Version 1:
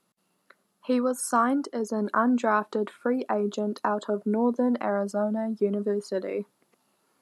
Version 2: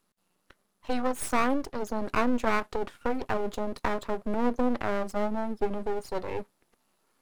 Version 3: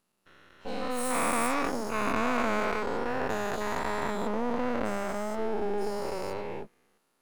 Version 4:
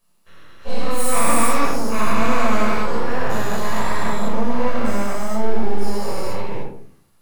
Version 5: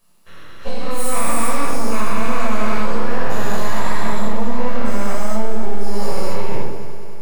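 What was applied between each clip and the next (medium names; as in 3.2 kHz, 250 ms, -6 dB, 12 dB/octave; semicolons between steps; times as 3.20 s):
half-wave rectifier; trim +1.5 dB
every event in the spectrogram widened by 480 ms; trim -8 dB
treble shelf 5.3 kHz +8 dB; simulated room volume 550 m³, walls furnished, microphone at 5.7 m; trim -1 dB
compression, threshold -18 dBFS, peak gain reduction 10 dB; on a send: multi-head delay 98 ms, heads second and third, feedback 63%, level -13.5 dB; on the sum: trim +6 dB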